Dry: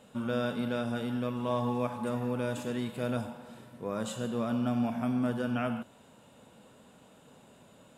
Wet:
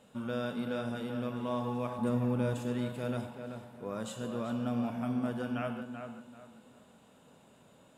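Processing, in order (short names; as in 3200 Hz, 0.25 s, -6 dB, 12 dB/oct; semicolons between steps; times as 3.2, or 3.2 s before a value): 1.98–2.54 low shelf 350 Hz +9 dB; tape echo 0.386 s, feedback 33%, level -6 dB, low-pass 2400 Hz; gain -4 dB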